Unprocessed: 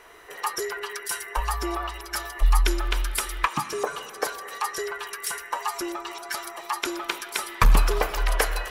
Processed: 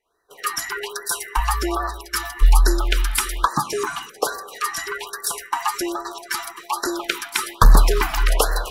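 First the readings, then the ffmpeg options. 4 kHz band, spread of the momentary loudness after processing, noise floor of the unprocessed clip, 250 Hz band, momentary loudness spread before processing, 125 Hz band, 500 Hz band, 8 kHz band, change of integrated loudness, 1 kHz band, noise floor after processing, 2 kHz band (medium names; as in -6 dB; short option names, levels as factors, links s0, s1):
+5.0 dB, 11 LU, -42 dBFS, +6.0 dB, 9 LU, +6.0 dB, +4.0 dB, +6.0 dB, +5.0 dB, +5.0 dB, -45 dBFS, +3.5 dB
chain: -af "agate=range=0.0224:threshold=0.0224:ratio=3:detection=peak,afftfilt=real='re*(1-between(b*sr/1024,450*pow(2800/450,0.5+0.5*sin(2*PI*1.2*pts/sr))/1.41,450*pow(2800/450,0.5+0.5*sin(2*PI*1.2*pts/sr))*1.41))':imag='im*(1-between(b*sr/1024,450*pow(2800/450,0.5+0.5*sin(2*PI*1.2*pts/sr))/1.41,450*pow(2800/450,0.5+0.5*sin(2*PI*1.2*pts/sr))*1.41))':win_size=1024:overlap=0.75,volume=2"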